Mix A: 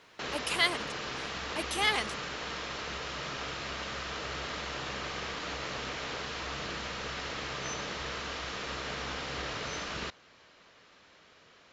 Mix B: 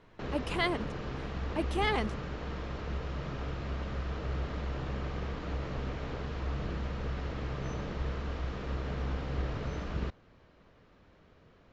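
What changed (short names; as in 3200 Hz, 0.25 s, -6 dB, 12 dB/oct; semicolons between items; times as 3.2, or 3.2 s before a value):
background -4.5 dB; master: add tilt -4.5 dB/oct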